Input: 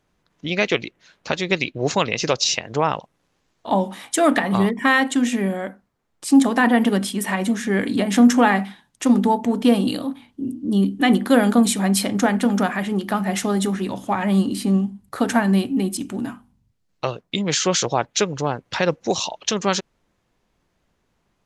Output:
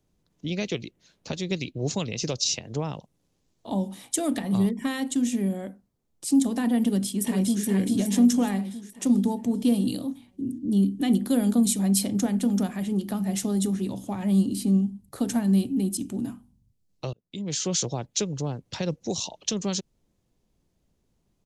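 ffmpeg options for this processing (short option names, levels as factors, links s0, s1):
-filter_complex "[0:a]asplit=2[s0][s1];[s1]afade=t=in:st=6.84:d=0.01,afade=t=out:st=7.64:d=0.01,aecho=0:1:420|840|1260|1680|2100|2520|2940:0.707946|0.353973|0.176986|0.0884932|0.0442466|0.0221233|0.0110617[s2];[s0][s2]amix=inputs=2:normalize=0,asplit=2[s3][s4];[s3]atrim=end=17.13,asetpts=PTS-STARTPTS,afade=t=out:st=17.126:d=0.004:c=hsin[s5];[s4]atrim=start=17.13,asetpts=PTS-STARTPTS,afade=t=in:d=0.64[s6];[s5][s6]concat=n=2:v=0:a=1,acrossover=split=210|3000[s7][s8][s9];[s8]acompressor=threshold=0.0282:ratio=1.5[s10];[s7][s10][s9]amix=inputs=3:normalize=0,equalizer=f=1500:w=0.49:g=-14.5"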